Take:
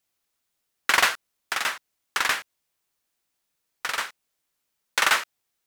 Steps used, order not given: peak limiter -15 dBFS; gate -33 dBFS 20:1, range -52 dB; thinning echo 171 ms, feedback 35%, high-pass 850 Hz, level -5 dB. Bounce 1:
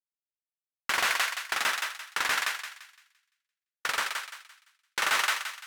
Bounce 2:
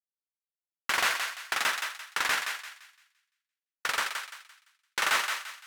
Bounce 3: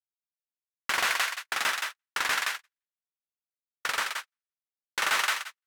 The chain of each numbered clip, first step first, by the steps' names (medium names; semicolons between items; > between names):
gate > thinning echo > peak limiter; gate > peak limiter > thinning echo; thinning echo > gate > peak limiter